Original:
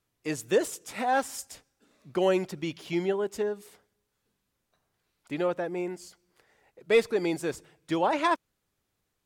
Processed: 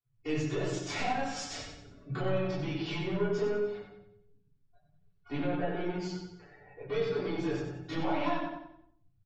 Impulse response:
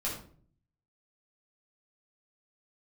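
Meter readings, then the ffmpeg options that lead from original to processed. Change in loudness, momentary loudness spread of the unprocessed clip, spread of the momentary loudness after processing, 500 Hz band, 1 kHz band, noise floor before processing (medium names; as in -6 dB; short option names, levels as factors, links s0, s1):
-5.0 dB, 12 LU, 12 LU, -5.5 dB, -6.0 dB, -80 dBFS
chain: -filter_complex "[0:a]asplit=2[s0][s1];[s1]acrusher=bits=6:mix=0:aa=0.000001,volume=0.668[s2];[s0][s2]amix=inputs=2:normalize=0,alimiter=limit=0.141:level=0:latency=1:release=22,lowpass=f=5400:w=0.5412,lowpass=f=5400:w=1.3066,equalizer=f=91:w=1.5:g=5,acompressor=threshold=0.0126:ratio=6,asoftclip=type=tanh:threshold=0.0126,acontrast=73,bandreject=f=60:t=h:w=6,bandreject=f=120:t=h:w=6,bandreject=f=180:t=h:w=6,bandreject=f=240:t=h:w=6,bandreject=f=300:t=h:w=6,bandreject=f=360:t=h:w=6,aecho=1:1:6.9:0.51[s3];[1:a]atrim=start_sample=2205,asetrate=26460,aresample=44100[s4];[s3][s4]afir=irnorm=-1:irlink=0,afftdn=nr=25:nf=-49,aecho=1:1:92|184|276|368|460:0.447|0.179|0.0715|0.0286|0.0114,volume=0.501"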